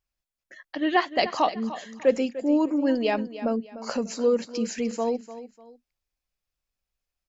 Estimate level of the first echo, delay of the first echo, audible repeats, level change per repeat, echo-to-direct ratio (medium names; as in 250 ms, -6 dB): -14.0 dB, 298 ms, 2, -10.0 dB, -13.5 dB